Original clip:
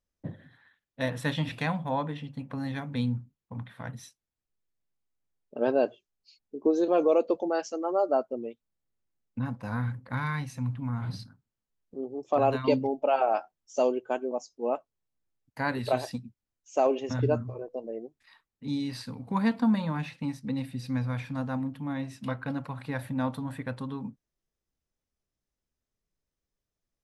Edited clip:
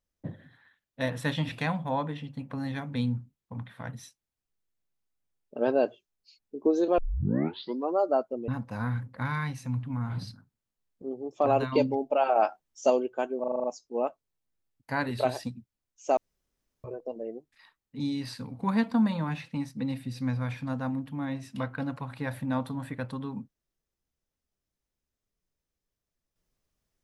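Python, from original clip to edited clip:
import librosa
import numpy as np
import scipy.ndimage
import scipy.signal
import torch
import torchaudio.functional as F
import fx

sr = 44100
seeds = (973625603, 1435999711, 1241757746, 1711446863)

y = fx.edit(x, sr, fx.tape_start(start_s=6.98, length_s=0.99),
    fx.cut(start_s=8.48, length_s=0.92),
    fx.clip_gain(start_s=13.28, length_s=0.54, db=3.5),
    fx.stutter(start_s=14.32, slice_s=0.04, count=7),
    fx.room_tone_fill(start_s=16.85, length_s=0.67), tone=tone)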